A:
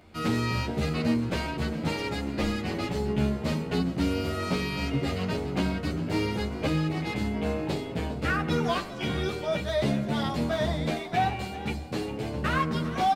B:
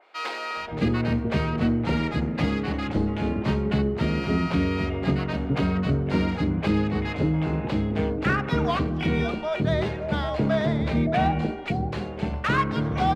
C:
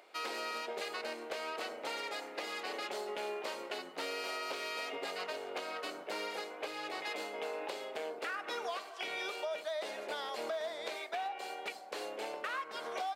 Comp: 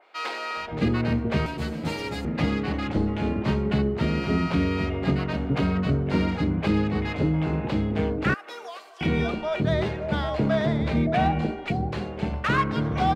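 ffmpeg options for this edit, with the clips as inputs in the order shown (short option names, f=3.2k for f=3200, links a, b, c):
-filter_complex "[1:a]asplit=3[a][b][c];[a]atrim=end=1.462[d];[0:a]atrim=start=1.458:end=2.252[e];[b]atrim=start=2.248:end=8.342[f];[2:a]atrim=start=8.338:end=9.012[g];[c]atrim=start=9.008[h];[d][e]acrossfade=d=0.004:c1=hsin:c2=hsin[i];[i][f]acrossfade=d=0.004:c1=hsin:c2=hsin[j];[j][g]acrossfade=d=0.004:c1=hsin:c2=hsin[k];[k][h]acrossfade=d=0.004:c1=hsin:c2=hsin"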